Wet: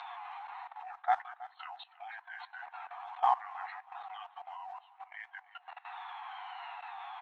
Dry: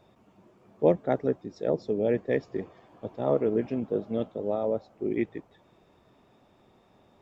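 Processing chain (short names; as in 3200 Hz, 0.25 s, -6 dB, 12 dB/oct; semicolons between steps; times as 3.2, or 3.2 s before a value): repeated pitch sweeps -6 st, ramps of 0.988 s; high shelf 2000 Hz -8.5 dB; in parallel at +1 dB: upward compressor, threshold -29 dBFS; on the sum: brick-wall FIR band-pass 710–4300 Hz; modulation noise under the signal 30 dB; flange 1.5 Hz, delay 8.1 ms, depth 3.9 ms, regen +3%; level quantiser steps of 20 dB; air absorption 130 m; feedback echo 0.321 s, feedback 24%, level -18 dB; gain +16 dB; Vorbis 96 kbps 32000 Hz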